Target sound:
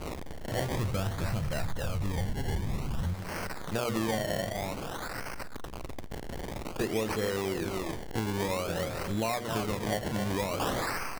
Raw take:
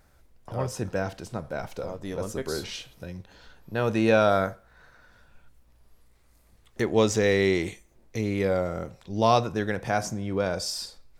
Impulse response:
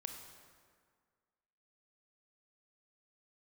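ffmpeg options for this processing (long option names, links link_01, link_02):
-filter_complex "[0:a]aeval=exprs='val(0)+0.5*0.0211*sgn(val(0))':channel_layout=same,highshelf=frequency=5700:gain=8.5,bandreject=frequency=60:width_type=h:width=6,bandreject=frequency=120:width_type=h:width=6,bandreject=frequency=180:width_type=h:width=6,bandreject=frequency=240:width_type=h:width=6,bandreject=frequency=300:width_type=h:width=6,bandreject=frequency=360:width_type=h:width=6,bandreject=frequency=420:width_type=h:width=6,bandreject=frequency=480:width_type=h:width=6,aecho=1:1:263:0.316,acrusher=samples=24:mix=1:aa=0.000001:lfo=1:lforange=24:lforate=0.52,asplit=3[link_01][link_02][link_03];[link_01]afade=type=out:start_time=0.72:duration=0.02[link_04];[link_02]asubboost=boost=9.5:cutoff=150,afade=type=in:start_time=0.72:duration=0.02,afade=type=out:start_time=3.13:duration=0.02[link_05];[link_03]afade=type=in:start_time=3.13:duration=0.02[link_06];[link_04][link_05][link_06]amix=inputs=3:normalize=0,acompressor=threshold=-27dB:ratio=10"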